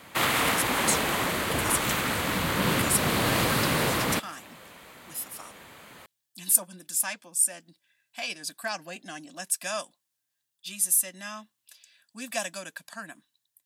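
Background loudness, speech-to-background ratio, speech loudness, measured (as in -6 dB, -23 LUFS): -25.5 LUFS, -4.0 dB, -29.5 LUFS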